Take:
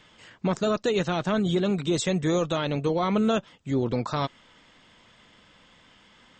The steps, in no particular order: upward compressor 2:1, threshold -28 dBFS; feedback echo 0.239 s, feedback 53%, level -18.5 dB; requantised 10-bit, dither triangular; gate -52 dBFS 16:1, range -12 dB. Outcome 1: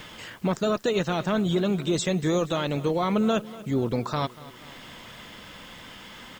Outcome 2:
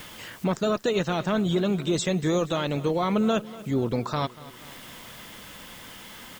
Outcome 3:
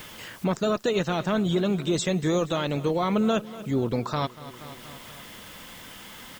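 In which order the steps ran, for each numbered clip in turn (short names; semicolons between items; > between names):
upward compressor > gate > requantised > feedback echo; requantised > upward compressor > feedback echo > gate; feedback echo > requantised > upward compressor > gate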